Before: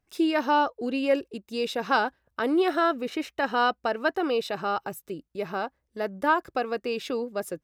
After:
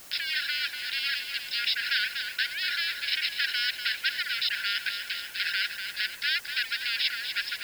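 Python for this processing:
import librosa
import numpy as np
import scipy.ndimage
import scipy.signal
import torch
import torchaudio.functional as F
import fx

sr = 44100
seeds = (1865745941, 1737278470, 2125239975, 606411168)

y = fx.leveller(x, sr, passes=5)
y = fx.dereverb_blind(y, sr, rt60_s=1.0)
y = fx.echo_feedback(y, sr, ms=243, feedback_pct=49, wet_db=-15)
y = fx.rider(y, sr, range_db=3, speed_s=0.5)
y = fx.brickwall_bandpass(y, sr, low_hz=1400.0, high_hz=5400.0)
y = fx.quant_dither(y, sr, seeds[0], bits=10, dither='triangular')
y = fx.spectral_comp(y, sr, ratio=2.0)
y = y * 10.0 ** (-3.5 / 20.0)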